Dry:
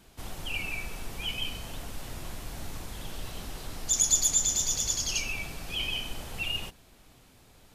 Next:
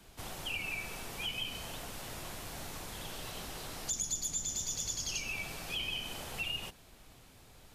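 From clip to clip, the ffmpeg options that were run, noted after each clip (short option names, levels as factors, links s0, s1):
-filter_complex "[0:a]equalizer=f=260:w=1.4:g=-2.5,acrossover=split=100|330[s0][s1][s2];[s0]acompressor=threshold=0.00355:ratio=4[s3];[s1]acompressor=threshold=0.00316:ratio=4[s4];[s2]acompressor=threshold=0.0178:ratio=4[s5];[s3][s4][s5]amix=inputs=3:normalize=0"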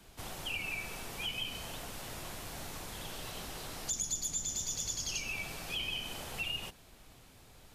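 -af anull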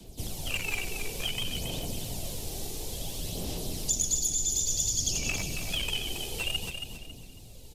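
-filter_complex "[0:a]acrossover=split=140|690|2900[s0][s1][s2][s3];[s2]acrusher=bits=5:mix=0:aa=0.5[s4];[s0][s1][s4][s3]amix=inputs=4:normalize=0,aphaser=in_gain=1:out_gain=1:delay=2.6:decay=0.46:speed=0.57:type=sinusoidal,aecho=1:1:275|550|825|1100:0.447|0.138|0.0429|0.0133,volume=2.11"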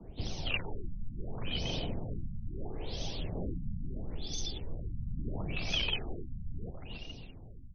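-af "afftfilt=real='re*lt(b*sr/1024,230*pow(6500/230,0.5+0.5*sin(2*PI*0.74*pts/sr)))':imag='im*lt(b*sr/1024,230*pow(6500/230,0.5+0.5*sin(2*PI*0.74*pts/sr)))':win_size=1024:overlap=0.75"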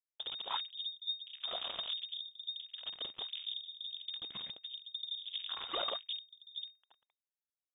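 -af "aeval=exprs='(tanh(25.1*val(0)+0.2)-tanh(0.2))/25.1':c=same,acrusher=bits=4:mix=0:aa=0.5,lowpass=f=3100:t=q:w=0.5098,lowpass=f=3100:t=q:w=0.6013,lowpass=f=3100:t=q:w=0.9,lowpass=f=3100:t=q:w=2.563,afreqshift=-3700"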